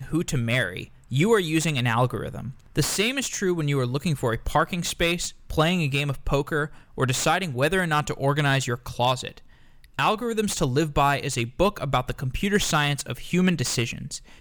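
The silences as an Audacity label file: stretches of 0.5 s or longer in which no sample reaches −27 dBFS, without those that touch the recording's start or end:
9.370000	9.990000	silence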